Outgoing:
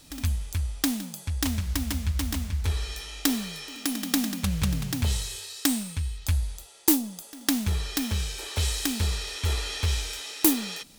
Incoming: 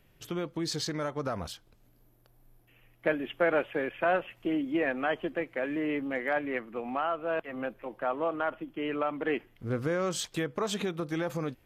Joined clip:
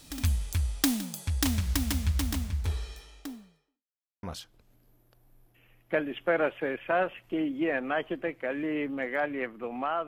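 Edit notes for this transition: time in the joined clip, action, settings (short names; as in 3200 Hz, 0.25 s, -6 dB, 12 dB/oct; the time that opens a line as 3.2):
outgoing
1.92–3.87 studio fade out
3.87–4.23 mute
4.23 switch to incoming from 1.36 s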